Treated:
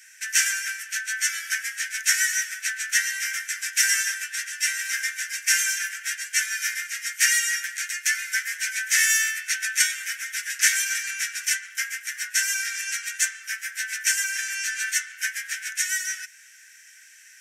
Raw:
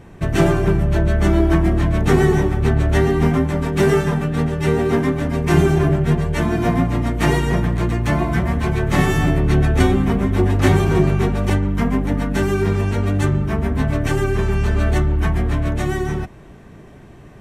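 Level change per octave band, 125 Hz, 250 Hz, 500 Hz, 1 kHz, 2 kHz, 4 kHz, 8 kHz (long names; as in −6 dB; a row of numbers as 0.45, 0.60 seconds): below −40 dB, below −40 dB, below −40 dB, −20.0 dB, +4.0 dB, +6.0 dB, +15.5 dB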